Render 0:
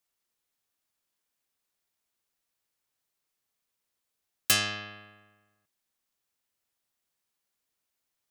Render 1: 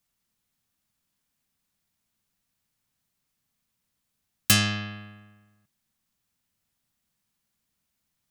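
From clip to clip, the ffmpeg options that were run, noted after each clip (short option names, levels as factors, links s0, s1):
-af "lowshelf=f=280:t=q:w=1.5:g=9.5,volume=1.5"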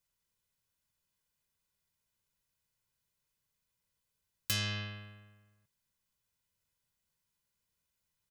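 -af "aecho=1:1:2:0.56,alimiter=limit=0.211:level=0:latency=1:release=293,volume=0.473"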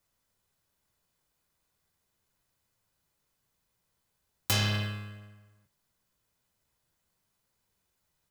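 -filter_complex "[0:a]flanger=delay=8.8:depth=9:regen=-40:speed=0.4:shape=sinusoidal,asplit=2[s0][s1];[s1]acrusher=samples=14:mix=1:aa=0.000001,volume=0.398[s2];[s0][s2]amix=inputs=2:normalize=0,volume=2.66"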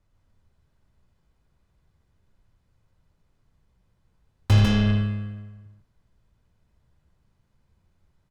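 -filter_complex "[0:a]aemphasis=mode=reproduction:type=riaa,asplit=2[s0][s1];[s1]asoftclip=type=tanh:threshold=0.133,volume=0.562[s2];[s0][s2]amix=inputs=2:normalize=0,aecho=1:1:81.63|148.7:0.282|0.794"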